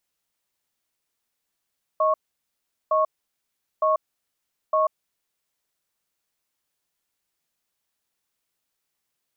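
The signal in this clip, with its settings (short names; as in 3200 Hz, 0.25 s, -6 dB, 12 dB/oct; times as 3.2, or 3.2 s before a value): cadence 627 Hz, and 1100 Hz, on 0.14 s, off 0.77 s, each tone -20 dBFS 2.94 s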